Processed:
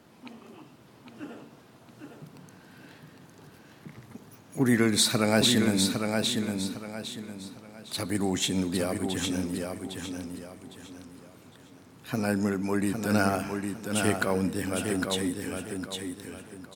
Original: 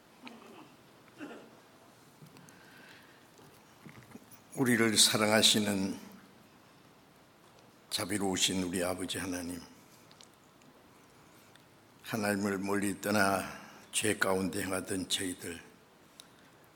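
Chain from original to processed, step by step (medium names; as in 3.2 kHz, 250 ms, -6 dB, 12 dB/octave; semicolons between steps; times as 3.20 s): high-pass 67 Hz; bass shelf 350 Hz +9 dB; feedback delay 807 ms, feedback 32%, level -5 dB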